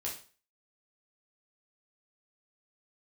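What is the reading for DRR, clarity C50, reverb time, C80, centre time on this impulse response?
-4.0 dB, 7.5 dB, 0.40 s, 13.0 dB, 26 ms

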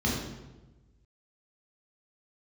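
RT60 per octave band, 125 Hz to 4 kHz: 1.6, 1.3, 1.2, 1.0, 0.85, 0.80 s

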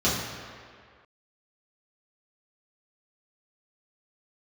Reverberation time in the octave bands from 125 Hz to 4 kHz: 1.6, 1.7, 2.0, 2.1, 2.0, 1.5 s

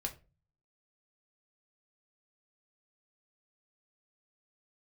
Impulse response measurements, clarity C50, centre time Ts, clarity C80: 15.0 dB, 9 ms, 20.0 dB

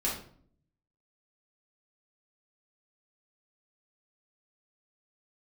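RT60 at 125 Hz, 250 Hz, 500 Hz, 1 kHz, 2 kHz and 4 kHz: 1.0, 0.80, 0.60, 0.50, 0.40, 0.40 s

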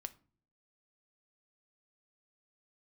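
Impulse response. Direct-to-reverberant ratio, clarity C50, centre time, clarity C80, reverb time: 10.0 dB, 19.0 dB, 3 ms, 24.0 dB, not exponential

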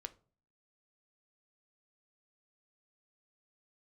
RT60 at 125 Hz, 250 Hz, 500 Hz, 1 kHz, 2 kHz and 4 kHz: 0.60, 0.60, 0.45, 0.40, 0.25, 0.25 s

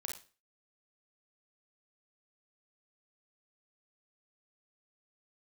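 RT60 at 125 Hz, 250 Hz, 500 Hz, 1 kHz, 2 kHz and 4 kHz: 0.40, 0.40, 0.35, 0.35, 0.35, 0.35 s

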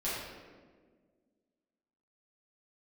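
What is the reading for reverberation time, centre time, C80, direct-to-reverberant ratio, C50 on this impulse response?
1.6 s, 94 ms, 1.5 dB, -10.5 dB, -1.5 dB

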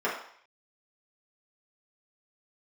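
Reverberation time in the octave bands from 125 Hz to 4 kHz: 0.30, 0.45, 0.55, 0.65, 0.60, 0.65 s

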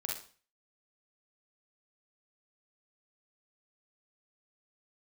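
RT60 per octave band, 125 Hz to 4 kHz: 0.45, 0.45, 0.40, 0.40, 0.40, 0.40 s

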